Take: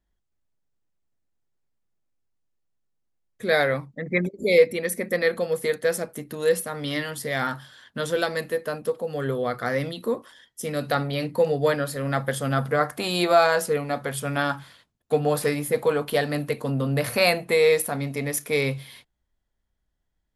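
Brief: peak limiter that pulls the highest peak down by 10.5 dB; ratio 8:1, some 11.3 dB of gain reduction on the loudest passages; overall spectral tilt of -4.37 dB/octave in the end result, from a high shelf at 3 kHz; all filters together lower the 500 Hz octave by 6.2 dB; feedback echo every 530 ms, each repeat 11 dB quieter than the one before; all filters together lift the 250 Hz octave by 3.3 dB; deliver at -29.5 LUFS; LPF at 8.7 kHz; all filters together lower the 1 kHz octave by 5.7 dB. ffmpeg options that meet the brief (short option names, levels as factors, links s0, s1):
-af "lowpass=8700,equalizer=f=250:t=o:g=7,equalizer=f=500:t=o:g=-7,equalizer=f=1000:t=o:g=-8,highshelf=f=3000:g=9,acompressor=threshold=0.0447:ratio=8,alimiter=limit=0.0631:level=0:latency=1,aecho=1:1:530|1060|1590:0.282|0.0789|0.0221,volume=1.68"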